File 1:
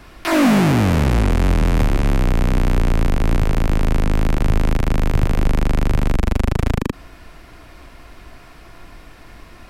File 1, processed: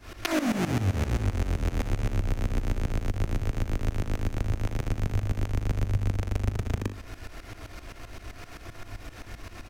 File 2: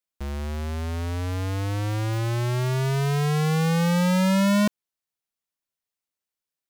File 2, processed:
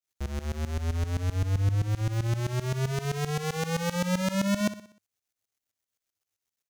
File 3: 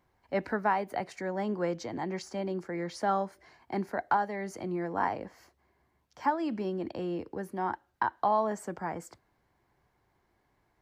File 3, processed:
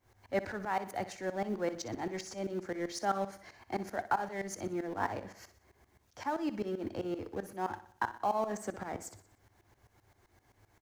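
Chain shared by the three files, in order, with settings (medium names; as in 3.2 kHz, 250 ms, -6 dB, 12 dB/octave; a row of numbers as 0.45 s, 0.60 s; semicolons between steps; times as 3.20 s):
companding laws mixed up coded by mu; graphic EQ with 31 bands 100 Hz +10 dB, 160 Hz -8 dB, 1 kHz -4 dB, 6.3 kHz +5 dB; compression 4:1, threshold -21 dBFS; tremolo saw up 7.7 Hz, depth 90%; feedback delay 61 ms, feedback 50%, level -14 dB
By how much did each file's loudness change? -11.0 LU, -5.0 LU, -4.0 LU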